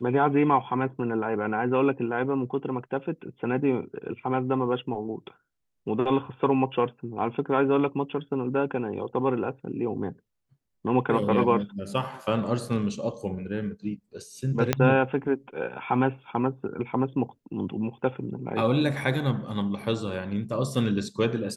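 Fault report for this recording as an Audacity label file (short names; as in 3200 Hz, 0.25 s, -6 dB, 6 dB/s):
14.730000	14.730000	pop -6 dBFS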